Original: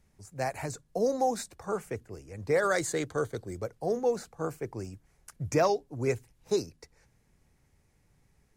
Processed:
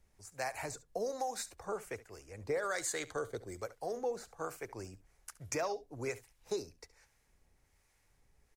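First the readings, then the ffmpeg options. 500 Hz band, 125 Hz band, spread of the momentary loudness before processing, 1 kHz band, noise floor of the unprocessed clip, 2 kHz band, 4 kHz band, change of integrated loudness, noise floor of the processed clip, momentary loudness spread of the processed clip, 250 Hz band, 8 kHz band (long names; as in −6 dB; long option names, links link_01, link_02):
−9.0 dB, −13.0 dB, 15 LU, −8.0 dB, −69 dBFS, −6.0 dB, −4.0 dB, −8.0 dB, −73 dBFS, 15 LU, −12.0 dB, −2.0 dB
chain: -filter_complex "[0:a]equalizer=frequency=160:width_type=o:width=2.4:gain=-12,acompressor=threshold=-34dB:ratio=3,acrossover=split=740[link_01][link_02];[link_01]aeval=exprs='val(0)*(1-0.5/2+0.5/2*cos(2*PI*1.2*n/s))':channel_layout=same[link_03];[link_02]aeval=exprs='val(0)*(1-0.5/2-0.5/2*cos(2*PI*1.2*n/s))':channel_layout=same[link_04];[link_03][link_04]amix=inputs=2:normalize=0,aecho=1:1:70:0.126,volume=2dB"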